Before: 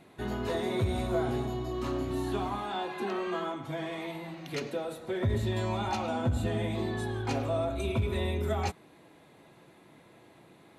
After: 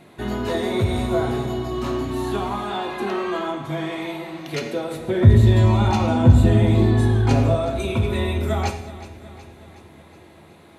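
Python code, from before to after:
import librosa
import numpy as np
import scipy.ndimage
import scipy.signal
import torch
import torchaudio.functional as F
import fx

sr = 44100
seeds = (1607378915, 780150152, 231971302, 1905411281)

y = fx.low_shelf(x, sr, hz=280.0, db=11.0, at=(4.94, 7.55))
y = fx.echo_feedback(y, sr, ms=369, feedback_pct=58, wet_db=-16.0)
y = fx.rev_gated(y, sr, seeds[0], gate_ms=240, shape='falling', drr_db=6.0)
y = y * librosa.db_to_amplitude(7.0)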